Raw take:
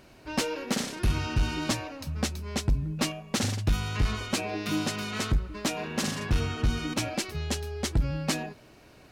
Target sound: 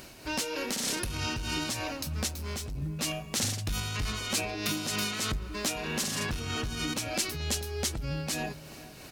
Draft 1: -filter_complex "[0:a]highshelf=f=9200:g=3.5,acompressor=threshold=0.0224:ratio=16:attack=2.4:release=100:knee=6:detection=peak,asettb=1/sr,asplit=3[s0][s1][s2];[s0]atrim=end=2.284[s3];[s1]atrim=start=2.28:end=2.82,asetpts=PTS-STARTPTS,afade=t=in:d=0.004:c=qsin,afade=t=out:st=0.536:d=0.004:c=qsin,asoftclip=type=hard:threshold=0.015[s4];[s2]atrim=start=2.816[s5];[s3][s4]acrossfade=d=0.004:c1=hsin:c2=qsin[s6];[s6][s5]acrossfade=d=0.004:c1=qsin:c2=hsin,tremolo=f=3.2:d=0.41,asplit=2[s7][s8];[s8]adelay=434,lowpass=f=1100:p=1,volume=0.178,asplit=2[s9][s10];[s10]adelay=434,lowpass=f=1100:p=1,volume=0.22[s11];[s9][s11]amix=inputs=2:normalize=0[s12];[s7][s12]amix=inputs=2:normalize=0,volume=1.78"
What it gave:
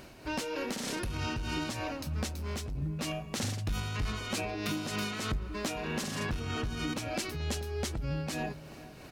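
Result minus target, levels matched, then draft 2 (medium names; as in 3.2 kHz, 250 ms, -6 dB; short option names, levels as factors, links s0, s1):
8 kHz band -5.5 dB
-filter_complex "[0:a]highshelf=f=9200:g=3.5,acompressor=threshold=0.0224:ratio=16:attack=2.4:release=100:knee=6:detection=peak,highshelf=f=3200:g=10.5,asettb=1/sr,asplit=3[s0][s1][s2];[s0]atrim=end=2.284[s3];[s1]atrim=start=2.28:end=2.82,asetpts=PTS-STARTPTS,afade=t=in:d=0.004:c=qsin,afade=t=out:st=0.536:d=0.004:c=qsin,asoftclip=type=hard:threshold=0.015[s4];[s2]atrim=start=2.816[s5];[s3][s4]acrossfade=d=0.004:c1=hsin:c2=qsin[s6];[s6][s5]acrossfade=d=0.004:c1=qsin:c2=hsin,tremolo=f=3.2:d=0.41,asplit=2[s7][s8];[s8]adelay=434,lowpass=f=1100:p=1,volume=0.178,asplit=2[s9][s10];[s10]adelay=434,lowpass=f=1100:p=1,volume=0.22[s11];[s9][s11]amix=inputs=2:normalize=0[s12];[s7][s12]amix=inputs=2:normalize=0,volume=1.78"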